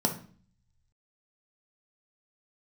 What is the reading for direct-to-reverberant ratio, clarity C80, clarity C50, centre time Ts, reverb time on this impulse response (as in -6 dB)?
3.0 dB, 16.0 dB, 10.5 dB, 13 ms, 0.45 s